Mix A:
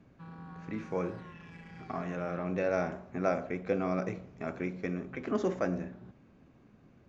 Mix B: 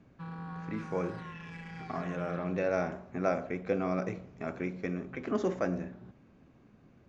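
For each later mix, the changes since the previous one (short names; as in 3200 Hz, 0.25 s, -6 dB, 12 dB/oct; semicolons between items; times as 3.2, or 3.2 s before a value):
background +6.0 dB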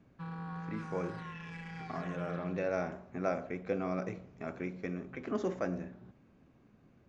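speech -3.5 dB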